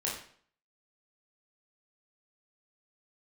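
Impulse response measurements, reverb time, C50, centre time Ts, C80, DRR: 0.55 s, 4.5 dB, 39 ms, 8.5 dB, -4.5 dB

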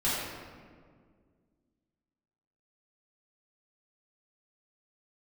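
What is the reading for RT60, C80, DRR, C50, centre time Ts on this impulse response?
1.9 s, 0.5 dB, -11.0 dB, -2.0 dB, 109 ms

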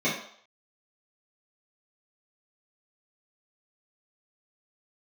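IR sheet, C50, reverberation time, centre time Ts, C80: 5.0 dB, 0.60 s, 37 ms, 9.0 dB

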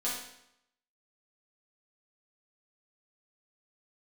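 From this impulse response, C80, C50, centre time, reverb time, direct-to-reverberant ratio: 6.0 dB, 2.0 dB, 50 ms, 0.80 s, -8.0 dB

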